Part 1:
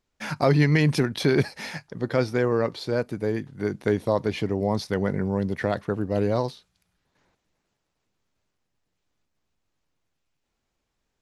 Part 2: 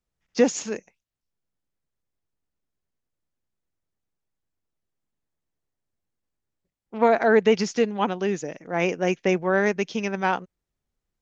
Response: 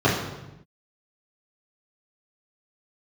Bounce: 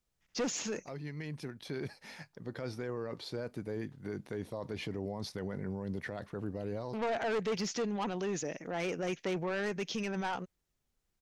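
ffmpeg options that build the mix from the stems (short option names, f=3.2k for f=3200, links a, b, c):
-filter_complex "[0:a]adelay=450,volume=-8dB[a];[1:a]acrossover=split=4200[b][c];[c]acompressor=threshold=-40dB:ratio=4:attack=1:release=60[d];[b][d]amix=inputs=2:normalize=0,highshelf=f=2.3k:g=4.5,asoftclip=type=tanh:threshold=-21dB,volume=-0.5dB,asplit=2[e][f];[f]apad=whole_len=514419[g];[a][g]sidechaincompress=threshold=-51dB:ratio=3:attack=48:release=1380[h];[h][e]amix=inputs=2:normalize=0,alimiter=level_in=5dB:limit=-24dB:level=0:latency=1:release=27,volume=-5dB"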